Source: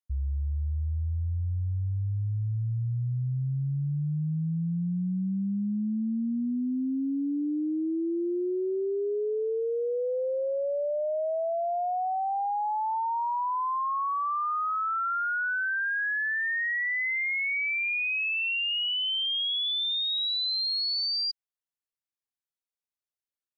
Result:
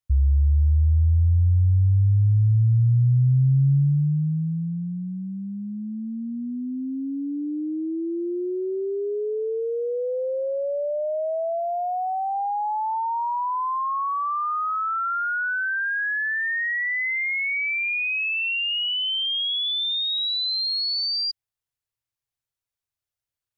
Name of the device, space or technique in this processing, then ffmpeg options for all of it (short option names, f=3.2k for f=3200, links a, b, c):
car stereo with a boomy subwoofer: -filter_complex "[0:a]asplit=3[a][b][c];[a]afade=t=out:st=11.58:d=0.02[d];[b]aemphasis=mode=production:type=75fm,afade=t=in:st=11.58:d=0.02,afade=t=out:st=12.33:d=0.02[e];[c]afade=t=in:st=12.33:d=0.02[f];[d][e][f]amix=inputs=3:normalize=0,lowshelf=f=150:t=q:w=3:g=8,alimiter=limit=-18dB:level=0:latency=1:release=32,volume=3.5dB"